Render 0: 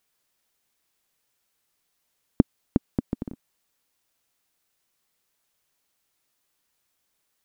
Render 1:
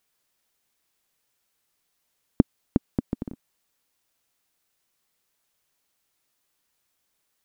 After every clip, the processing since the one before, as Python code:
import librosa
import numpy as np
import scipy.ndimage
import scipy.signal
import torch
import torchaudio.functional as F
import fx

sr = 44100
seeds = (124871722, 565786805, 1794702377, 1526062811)

y = x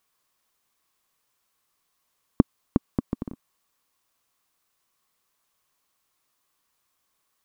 y = fx.peak_eq(x, sr, hz=1100.0, db=10.0, octaves=0.32)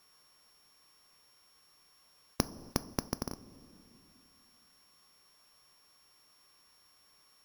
y = np.r_[np.sort(x[:len(x) // 8 * 8].reshape(-1, 8), axis=1).ravel(), x[len(x) // 8 * 8:]]
y = fx.rev_double_slope(y, sr, seeds[0], early_s=0.23, late_s=2.6, knee_db=-20, drr_db=16.5)
y = fx.spectral_comp(y, sr, ratio=2.0)
y = F.gain(torch.from_numpy(y), -7.5).numpy()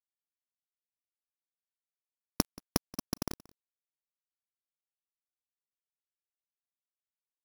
y = fx.quant_dither(x, sr, seeds[1], bits=6, dither='none')
y = y * np.sin(2.0 * np.pi * 39.0 * np.arange(len(y)) / sr)
y = y + 10.0 ** (-23.0 / 20.0) * np.pad(y, (int(179 * sr / 1000.0), 0))[:len(y)]
y = F.gain(torch.from_numpy(y), 4.5).numpy()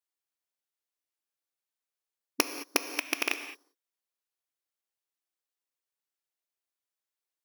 y = fx.rattle_buzz(x, sr, strikes_db=-35.0, level_db=-13.0)
y = fx.brickwall_highpass(y, sr, low_hz=270.0)
y = fx.rev_gated(y, sr, seeds[2], gate_ms=240, shape='flat', drr_db=8.5)
y = F.gain(torch.from_numpy(y), 3.0).numpy()